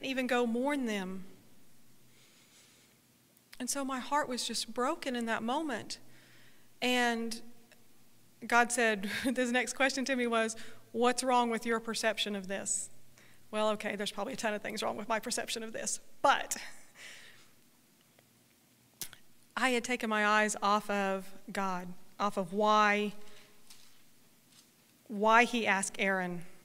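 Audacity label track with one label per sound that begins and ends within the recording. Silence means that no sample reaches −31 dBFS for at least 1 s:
3.530000	7.330000	sound
8.500000	16.560000	sound
19.010000	23.080000	sound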